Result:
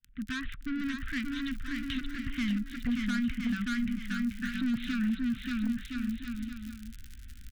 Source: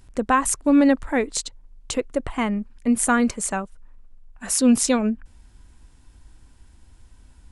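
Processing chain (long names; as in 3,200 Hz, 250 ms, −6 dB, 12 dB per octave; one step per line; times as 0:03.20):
fade in at the beginning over 0.53 s
downsampling to 8,000 Hz
soft clipping −22.5 dBFS, distortion −7 dB
surface crackle 30 per second −33 dBFS
on a send: bouncing-ball delay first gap 580 ms, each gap 0.75×, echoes 5
on the sum: downward compressor 8 to 1, threshold −26 dBFS, peak gain reduction 5.5 dB
elliptic band-stop filter 250–1,500 Hz, stop band 40 dB
gain into a clipping stage and back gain 24.5 dB
level +1 dB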